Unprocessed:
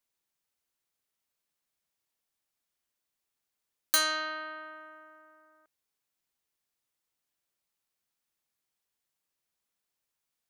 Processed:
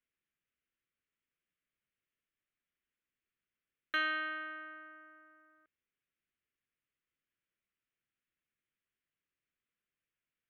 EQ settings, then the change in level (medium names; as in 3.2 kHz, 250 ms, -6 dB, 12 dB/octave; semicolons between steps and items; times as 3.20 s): inverse Chebyshev low-pass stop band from 6.9 kHz, stop band 40 dB; static phaser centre 2 kHz, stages 4; 0.0 dB